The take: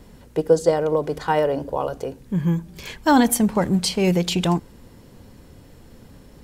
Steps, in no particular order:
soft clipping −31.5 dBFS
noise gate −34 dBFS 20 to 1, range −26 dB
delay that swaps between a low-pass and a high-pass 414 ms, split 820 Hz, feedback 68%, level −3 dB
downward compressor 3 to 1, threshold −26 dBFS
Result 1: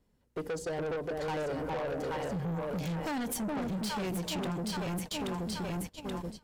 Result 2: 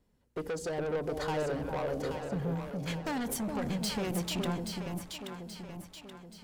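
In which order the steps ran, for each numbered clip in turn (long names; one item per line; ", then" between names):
delay that swaps between a low-pass and a high-pass, then downward compressor, then noise gate, then soft clipping
noise gate, then downward compressor, then soft clipping, then delay that swaps between a low-pass and a high-pass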